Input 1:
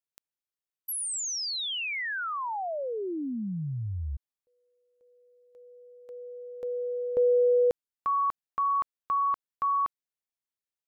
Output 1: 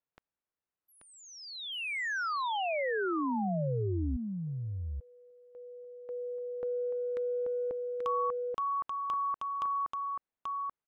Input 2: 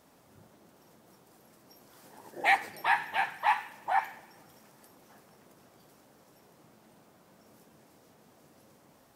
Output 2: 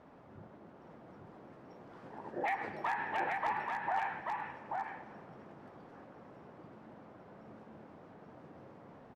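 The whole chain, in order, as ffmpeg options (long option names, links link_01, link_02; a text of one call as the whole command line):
ffmpeg -i in.wav -af "lowpass=1700,acompressor=threshold=-36dB:ratio=8:attack=4.6:release=62:knee=6:detection=rms,aeval=exprs='0.0282*(abs(mod(val(0)/0.0282+3,4)-2)-1)':channel_layout=same,aecho=1:1:834:0.668,volume=5dB" out.wav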